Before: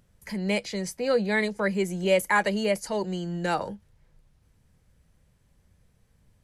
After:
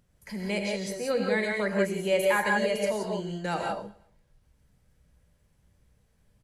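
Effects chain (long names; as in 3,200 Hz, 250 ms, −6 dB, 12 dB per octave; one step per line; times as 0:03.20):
on a send: repeating echo 116 ms, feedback 43%, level −22 dB
on the sum: reverb whose tail is shaped and stops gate 200 ms rising, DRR 0 dB
level −4.5 dB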